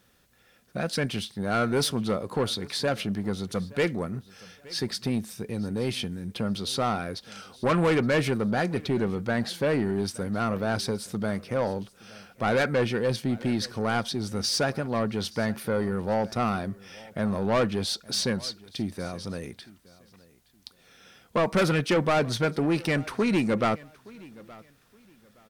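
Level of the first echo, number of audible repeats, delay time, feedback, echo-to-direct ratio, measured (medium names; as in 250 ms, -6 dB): -22.0 dB, 2, 870 ms, 25%, -21.5 dB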